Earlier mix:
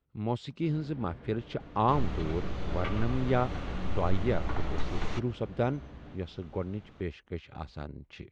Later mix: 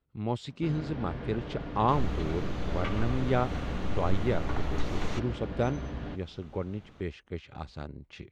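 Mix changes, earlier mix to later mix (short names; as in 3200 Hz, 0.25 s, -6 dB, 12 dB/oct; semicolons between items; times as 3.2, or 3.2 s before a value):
first sound +11.0 dB; master: remove air absorption 58 m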